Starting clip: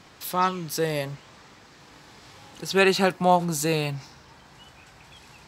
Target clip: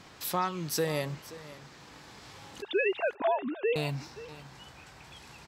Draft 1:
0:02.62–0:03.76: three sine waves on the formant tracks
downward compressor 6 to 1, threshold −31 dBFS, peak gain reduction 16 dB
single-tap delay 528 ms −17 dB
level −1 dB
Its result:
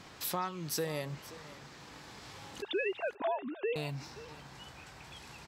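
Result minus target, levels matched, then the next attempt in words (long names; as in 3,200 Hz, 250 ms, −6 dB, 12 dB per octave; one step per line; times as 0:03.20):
downward compressor: peak gain reduction +6 dB
0:02.62–0:03.76: three sine waves on the formant tracks
downward compressor 6 to 1, threshold −24 dBFS, peak gain reduction 10.5 dB
single-tap delay 528 ms −17 dB
level −1 dB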